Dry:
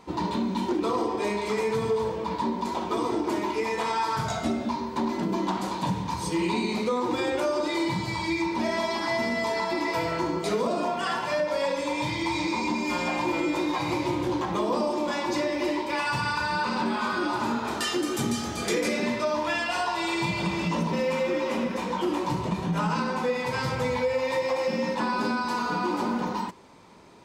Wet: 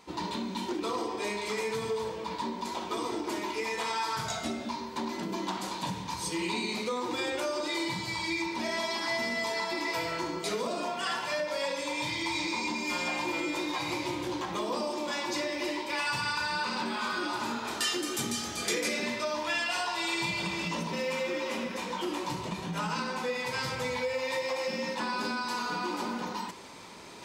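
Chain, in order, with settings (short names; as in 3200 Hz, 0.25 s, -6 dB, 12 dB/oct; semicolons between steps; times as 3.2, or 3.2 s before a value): bell 920 Hz -5.5 dB 2.2 oct; reverse; upward compressor, threshold -34 dBFS; reverse; low shelf 390 Hz -12 dB; gain +1.5 dB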